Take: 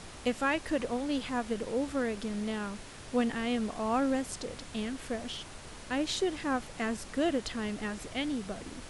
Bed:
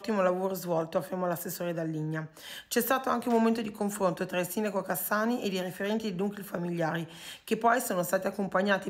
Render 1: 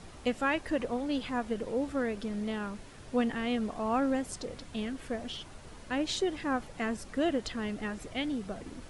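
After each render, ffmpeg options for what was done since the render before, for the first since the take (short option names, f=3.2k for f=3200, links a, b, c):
-af "afftdn=nr=7:nf=-47"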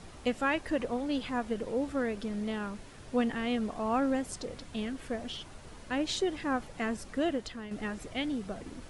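-filter_complex "[0:a]asplit=2[a][b];[a]atrim=end=7.71,asetpts=PTS-STARTPTS,afade=t=out:st=6.98:d=0.73:c=qsin:silence=0.316228[c];[b]atrim=start=7.71,asetpts=PTS-STARTPTS,afade=t=in:d=0.004:c=hsin:silence=0.316228[d];[c][d]concat=n=2:v=0:a=1"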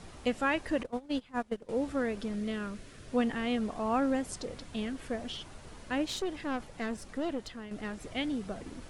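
-filter_complex "[0:a]asettb=1/sr,asplit=3[a][b][c];[a]atrim=end=0.834[d];[b]atrim=start=0.83:end=1.69,asetpts=PTS-STARTPTS,afade=t=in:d=0.004:c=qsin,afade=t=out:st=0.856:d=0.004:c=qsin,agate=range=-19dB:threshold=-32dB:ratio=16:release=100:detection=peak[e];[c]atrim=start=1.686[f];[d][e]acrossfade=d=0.004:c1=hsin:c2=qsin[g];[g][f]acrossfade=d=0.004:c1=qsin:c2=hsin,asettb=1/sr,asplit=3[h][i][j];[h]atrim=end=2.354[k];[i]atrim=start=2.35:end=3.1,asetpts=PTS-STARTPTS,afade=t=in:d=0.004:c=qsin,afade=t=out:st=0.746:d=0.004:c=qsin,equalizer=f=870:w=4.1:g=-12.5[l];[j]atrim=start=3.096[m];[k][l]acrossfade=d=0.004:c1=hsin:c2=qsin[n];[n][m]acrossfade=d=0.004:c1=qsin:c2=hsin,asettb=1/sr,asplit=3[o][p][q];[o]atrim=end=6.054[r];[p]atrim=start=6.05:end=8.04,asetpts=PTS-STARTPTS,afade=t=in:d=0.004:c=qsin,afade=t=out:st=1.986:d=0.004:c=qsin,aeval=exprs='(tanh(25.1*val(0)+0.5)-tanh(0.5))/25.1':c=same[s];[q]atrim=start=8.036[t];[r][s]acrossfade=d=0.004:c1=hsin:c2=qsin[u];[u][t]acrossfade=d=0.004:c1=qsin:c2=hsin"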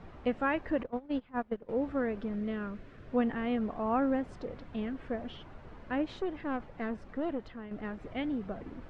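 -af "lowpass=1.9k"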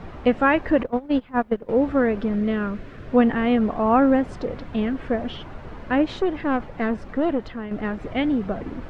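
-af "volume=12dB"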